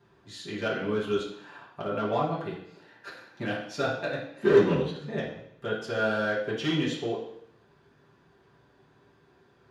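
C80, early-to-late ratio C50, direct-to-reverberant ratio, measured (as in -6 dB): 8.5 dB, 4.5 dB, -9.0 dB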